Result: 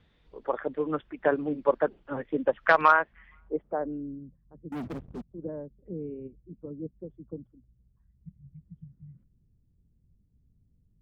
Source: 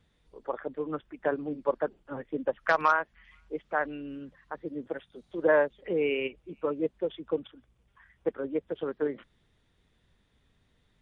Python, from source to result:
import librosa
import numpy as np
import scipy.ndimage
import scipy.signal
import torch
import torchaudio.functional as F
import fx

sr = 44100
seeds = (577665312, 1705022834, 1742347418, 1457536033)

y = fx.filter_sweep_lowpass(x, sr, from_hz=3600.0, to_hz=170.0, start_s=2.91, end_s=4.25, q=0.93)
y = fx.leveller(y, sr, passes=5, at=(4.72, 5.22))
y = fx.spec_repair(y, sr, seeds[0], start_s=8.23, length_s=0.97, low_hz=210.0, high_hz=1900.0, source='both')
y = y * 10.0 ** (4.0 / 20.0)